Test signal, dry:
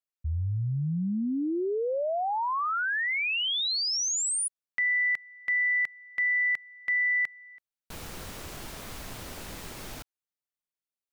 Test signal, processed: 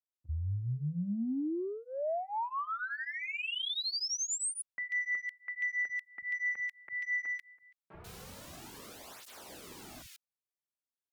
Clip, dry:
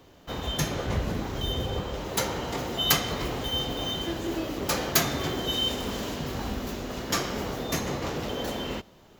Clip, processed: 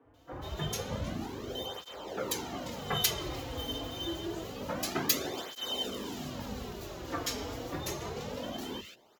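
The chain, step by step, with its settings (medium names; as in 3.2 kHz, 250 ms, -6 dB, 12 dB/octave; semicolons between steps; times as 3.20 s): Chebyshev shaper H 7 -26 dB, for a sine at -5 dBFS; three bands offset in time mids, lows, highs 40/140 ms, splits 150/1900 Hz; cancelling through-zero flanger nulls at 0.27 Hz, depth 5.6 ms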